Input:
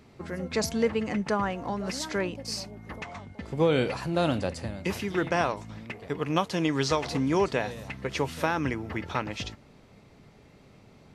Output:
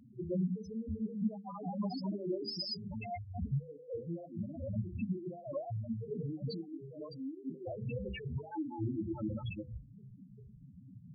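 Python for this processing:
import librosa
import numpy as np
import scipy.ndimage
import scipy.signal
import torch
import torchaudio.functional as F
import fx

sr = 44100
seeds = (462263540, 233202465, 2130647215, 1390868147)

y = fx.reverse_delay(x, sr, ms=163, wet_db=-1.0)
y = fx.high_shelf(y, sr, hz=5500.0, db=7.5)
y = fx.over_compress(y, sr, threshold_db=-31.0, ratio=-0.5)
y = fx.spec_topn(y, sr, count=2)
y = fx.hum_notches(y, sr, base_hz=50, count=10)
y = y * librosa.db_to_amplitude(1.0)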